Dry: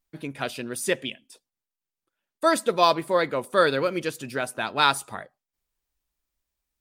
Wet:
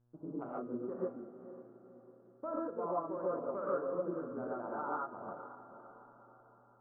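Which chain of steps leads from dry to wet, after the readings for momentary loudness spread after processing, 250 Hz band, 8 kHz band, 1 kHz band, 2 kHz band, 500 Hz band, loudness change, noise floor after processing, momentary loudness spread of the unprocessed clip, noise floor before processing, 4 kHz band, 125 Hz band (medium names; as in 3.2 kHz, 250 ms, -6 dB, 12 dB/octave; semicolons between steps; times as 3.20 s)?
20 LU, -9.5 dB, under -40 dB, -15.5 dB, -25.5 dB, -12.0 dB, -15.0 dB, -64 dBFS, 12 LU, under -85 dBFS, under -40 dB, -14.0 dB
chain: local Wiener filter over 25 samples; steep low-pass 1.4 kHz 72 dB/octave; peaking EQ 90 Hz -13 dB 1.4 oct; compression 3:1, threshold -35 dBFS, peak gain reduction 15 dB; feedback comb 83 Hz, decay 1.5 s, harmonics all, mix 60%; echo that smears into a reverb 499 ms, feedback 48%, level -12 dB; gated-style reverb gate 170 ms rising, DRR -6 dB; mains buzz 120 Hz, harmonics 14, -72 dBFS -9 dB/octave; trim -2 dB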